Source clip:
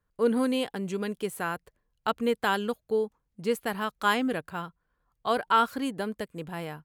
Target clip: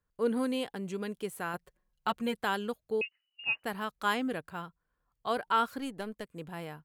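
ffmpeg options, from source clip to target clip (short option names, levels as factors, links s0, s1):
-filter_complex "[0:a]asettb=1/sr,asplit=3[s0][s1][s2];[s0]atrim=end=1.534[s3];[s1]atrim=start=1.53:end=2.42,asetpts=PTS-STARTPTS,afade=t=in:d=0.004:c=qsin,afade=t=out:st=0.886:d=0.004:c=qsin,aecho=1:1:5.5:0.83,atrim=end_sample=39249[s4];[s2]atrim=start=2.416[s5];[s3][s4]acrossfade=d=0.004:c1=hsin:c2=qsin[s6];[s6][s5]acrossfade=d=0.004:c1=qsin:c2=hsin,asettb=1/sr,asplit=3[s7][s8][s9];[s7]atrim=end=3.014[s10];[s8]atrim=start=3.01:end=3.64,asetpts=PTS-STARTPTS,afade=t=in:d=0.004:c=qsin,afade=t=out:st=0.626:d=0.004:c=qsin,lowpass=f=2600:t=q:w=0.5098,lowpass=f=2600:t=q:w=0.6013,lowpass=f=2600:t=q:w=0.9,lowpass=f=2600:t=q:w=2.563,afreqshift=-3000[s11];[s9]atrim=start=3.636[s12];[s10][s11]acrossfade=d=0.004:c1=hsin:c2=qsin[s13];[s13][s12]acrossfade=d=0.004:c1=qsin:c2=hsin,asettb=1/sr,asplit=3[s14][s15][s16];[s14]atrim=end=5.794[s17];[s15]atrim=start=5.79:end=6.3,asetpts=PTS-STARTPTS,afade=t=in:d=0.004:c=qsin,afade=t=out:st=0.506:d=0.004:c=qsin,aeval=exprs='0.112*(cos(1*acos(clip(val(0)/0.112,-1,1)))-cos(1*PI/2))+0.0112*(cos(3*acos(clip(val(0)/0.112,-1,1)))-cos(3*PI/2))+0.00282*(cos(8*acos(clip(val(0)/0.112,-1,1)))-cos(8*PI/2))':c=same[s18];[s16]atrim=start=6.296[s19];[s17][s18]acrossfade=d=0.004:c1=hsin:c2=qsin[s20];[s20][s19]acrossfade=d=0.004:c1=qsin:c2=hsin,volume=0.562"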